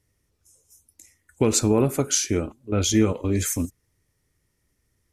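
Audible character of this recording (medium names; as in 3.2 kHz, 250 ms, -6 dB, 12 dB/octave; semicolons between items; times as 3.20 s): noise floor -73 dBFS; spectral tilt -4.5 dB/octave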